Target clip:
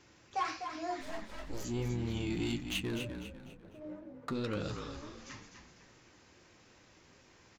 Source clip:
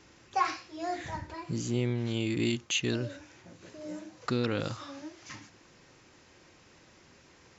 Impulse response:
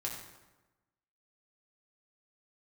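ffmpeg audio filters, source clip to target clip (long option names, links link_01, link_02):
-filter_complex "[0:a]asplit=3[link_01][link_02][link_03];[link_01]afade=type=out:start_time=1:duration=0.02[link_04];[link_02]aeval=exprs='abs(val(0))':channel_layout=same,afade=type=in:start_time=1:duration=0.02,afade=type=out:start_time=1.63:duration=0.02[link_05];[link_03]afade=type=in:start_time=1.63:duration=0.02[link_06];[link_04][link_05][link_06]amix=inputs=3:normalize=0,asettb=1/sr,asplit=3[link_07][link_08][link_09];[link_07]atrim=end=2.644[link_10];[link_08]atrim=start=2.64:end=4.35,asetpts=PTS-STARTPTS,afade=type=in:duration=0.004:curve=qsin,afade=type=out:start_time=1.706:duration=0.004:curve=qsin,adynamicsmooth=sensitivity=4.5:basefreq=930[link_11];[link_09]atrim=start=4.346[link_12];[link_10][link_11]acrossfade=duration=0.004:curve1=hsin:curve2=qsin[link_13];[link_13][link_12]acrossfade=duration=0.004:curve1=qsin:curve2=hsin,asoftclip=type=tanh:threshold=-23.5dB,flanger=delay=7.7:depth=4.7:regen=-47:speed=1.5:shape=triangular,asplit=5[link_14][link_15][link_16][link_17][link_18];[link_15]adelay=249,afreqshift=-47,volume=-7.5dB[link_19];[link_16]adelay=498,afreqshift=-94,volume=-15.9dB[link_20];[link_17]adelay=747,afreqshift=-141,volume=-24.3dB[link_21];[link_18]adelay=996,afreqshift=-188,volume=-32.7dB[link_22];[link_14][link_19][link_20][link_21][link_22]amix=inputs=5:normalize=0"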